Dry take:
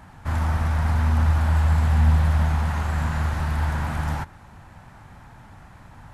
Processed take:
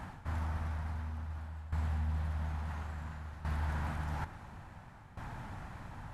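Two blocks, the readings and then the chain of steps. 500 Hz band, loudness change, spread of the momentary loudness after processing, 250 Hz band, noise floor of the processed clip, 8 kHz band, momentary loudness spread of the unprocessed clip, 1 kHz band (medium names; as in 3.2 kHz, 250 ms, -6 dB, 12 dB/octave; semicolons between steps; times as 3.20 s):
-14.5 dB, -17.0 dB, 13 LU, -15.0 dB, -53 dBFS, no reading, 9 LU, -14.0 dB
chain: treble shelf 6.1 kHz -5 dB; reverse; compression 8:1, threshold -34 dBFS, peak gain reduction 20 dB; reverse; tremolo saw down 0.58 Hz, depth 80%; trim +2.5 dB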